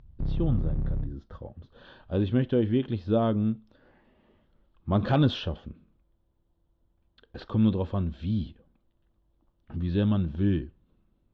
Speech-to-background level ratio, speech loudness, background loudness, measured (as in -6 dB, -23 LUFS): 5.5 dB, -27.5 LUFS, -33.0 LUFS